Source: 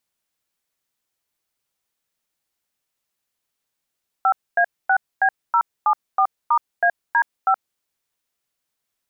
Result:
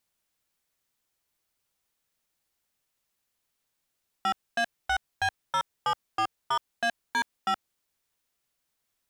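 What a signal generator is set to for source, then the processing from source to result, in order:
DTMF "5A6B074*AD5", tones 73 ms, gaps 249 ms, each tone -16 dBFS
bass shelf 93 Hz +5.5 dB; saturation -23.5 dBFS

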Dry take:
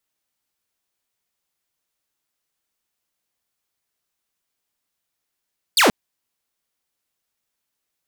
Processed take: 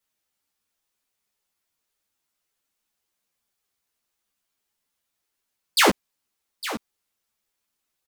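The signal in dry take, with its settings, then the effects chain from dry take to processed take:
laser zap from 5.1 kHz, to 180 Hz, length 0.13 s saw, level -9 dB
in parallel at -8 dB: saturation -19.5 dBFS; on the sum: delay 858 ms -13 dB; three-phase chorus

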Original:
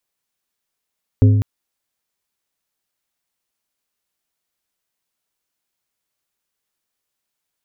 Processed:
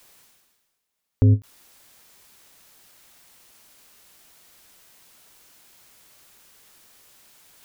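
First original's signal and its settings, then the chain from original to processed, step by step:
glass hit plate, length 0.20 s, lowest mode 104 Hz, modes 4, decay 1.35 s, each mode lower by 7.5 dB, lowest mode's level -6 dB
reverse; upward compressor, threshold -33 dBFS; reverse; peak limiter -8 dBFS; endings held to a fixed fall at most 400 dB/s

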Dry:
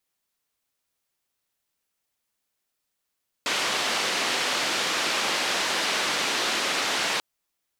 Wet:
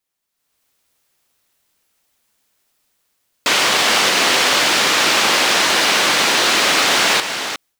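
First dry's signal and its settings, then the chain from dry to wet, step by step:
noise band 260–4200 Hz, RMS -26 dBFS 3.74 s
chunks repeated in reverse 378 ms, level -8 dB; level rider gain up to 13 dB; short-mantissa float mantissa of 2-bit

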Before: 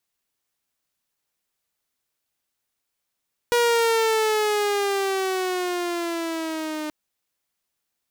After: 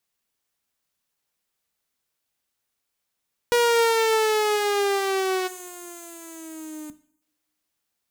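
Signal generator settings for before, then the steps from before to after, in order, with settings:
gliding synth tone saw, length 3.38 s, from 481 Hz, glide -8 st, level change -11 dB, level -14 dB
time-frequency box 5.47–7.21 s, 310–6100 Hz -16 dB; two-slope reverb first 0.54 s, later 1.6 s, from -24 dB, DRR 13.5 dB

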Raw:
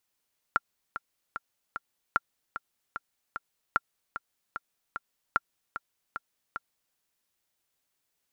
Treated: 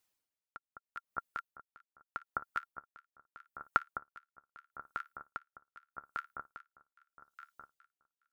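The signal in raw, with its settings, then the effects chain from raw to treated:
metronome 150 bpm, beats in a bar 4, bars 4, 1.38 kHz, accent 11.5 dB -9.5 dBFS
reverb removal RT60 1.9 s; echo whose repeats swap between lows and highs 207 ms, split 1.4 kHz, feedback 77%, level -3.5 dB; logarithmic tremolo 0.8 Hz, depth 23 dB

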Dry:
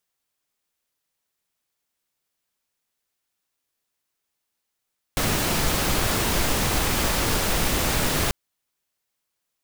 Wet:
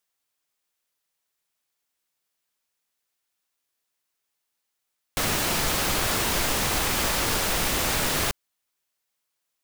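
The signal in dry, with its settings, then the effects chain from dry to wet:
noise pink, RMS -22.5 dBFS 3.14 s
bass shelf 400 Hz -6 dB

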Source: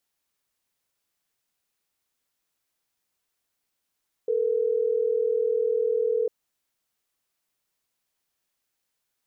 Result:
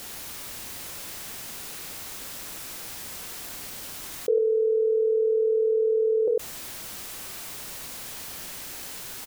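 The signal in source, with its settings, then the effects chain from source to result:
call progress tone ringback tone, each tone -24 dBFS
bass shelf 430 Hz +4.5 dB; loudspeakers at several distances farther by 11 m -10 dB, 34 m -5 dB; level flattener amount 70%

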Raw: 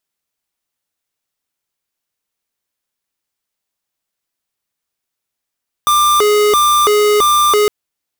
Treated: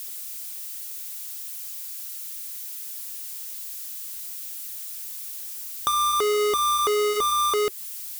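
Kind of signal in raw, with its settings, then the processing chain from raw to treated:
siren hi-lo 418–1190 Hz 1.5 per s square -11 dBFS 1.81 s
zero-crossing glitches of -27.5 dBFS; flange 0.63 Hz, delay 0.3 ms, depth 3.3 ms, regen -83%; compression 6:1, threshold -22 dBFS

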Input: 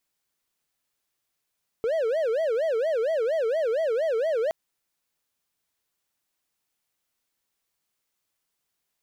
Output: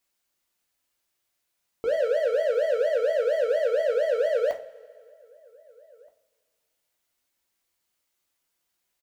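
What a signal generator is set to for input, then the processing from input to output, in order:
siren wail 439–657 Hz 4.3 per s triangle -20 dBFS 2.67 s
hum notches 50/100/150/200/250/300/350/400/450 Hz; echo from a far wall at 270 m, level -28 dB; two-slope reverb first 0.28 s, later 1.9 s, from -20 dB, DRR 2.5 dB

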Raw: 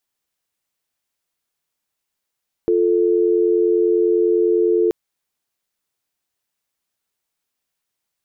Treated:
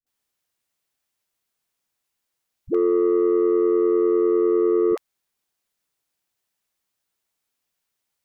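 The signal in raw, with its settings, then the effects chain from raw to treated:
call progress tone dial tone, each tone -16 dBFS 2.23 s
saturation -13.5 dBFS; phase dispersion highs, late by 67 ms, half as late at 300 Hz

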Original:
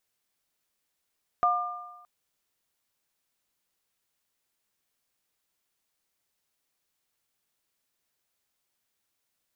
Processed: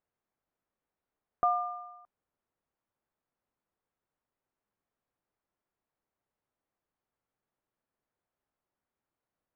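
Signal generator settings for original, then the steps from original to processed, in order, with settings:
sine partials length 0.62 s, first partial 714 Hz, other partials 1.2 kHz, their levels 2.5 dB, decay 1.06 s, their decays 1.15 s, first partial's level -22.5 dB
low-pass 1.2 kHz 12 dB/octave

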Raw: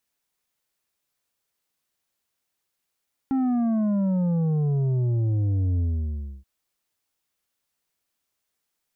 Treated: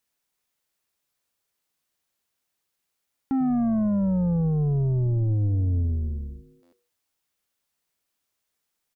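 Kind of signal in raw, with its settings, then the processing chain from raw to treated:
sub drop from 270 Hz, over 3.13 s, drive 7 dB, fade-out 0.65 s, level -21 dB
frequency-shifting echo 93 ms, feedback 54%, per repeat -110 Hz, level -17.5 dB; buffer glitch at 6.62 s, samples 512, times 8

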